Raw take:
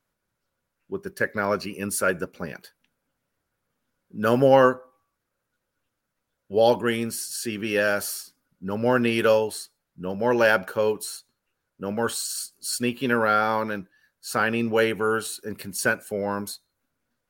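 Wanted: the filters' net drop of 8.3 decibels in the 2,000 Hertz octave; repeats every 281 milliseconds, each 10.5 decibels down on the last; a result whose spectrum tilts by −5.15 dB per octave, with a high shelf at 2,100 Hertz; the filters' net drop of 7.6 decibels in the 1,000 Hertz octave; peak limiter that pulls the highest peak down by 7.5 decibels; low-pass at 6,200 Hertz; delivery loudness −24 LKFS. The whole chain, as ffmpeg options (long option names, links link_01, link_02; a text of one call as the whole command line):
ffmpeg -i in.wav -af "lowpass=6200,equalizer=frequency=1000:width_type=o:gain=-7.5,equalizer=frequency=2000:width_type=o:gain=-5.5,highshelf=frequency=2100:gain=-5,alimiter=limit=-15dB:level=0:latency=1,aecho=1:1:281|562|843:0.299|0.0896|0.0269,volume=5dB" out.wav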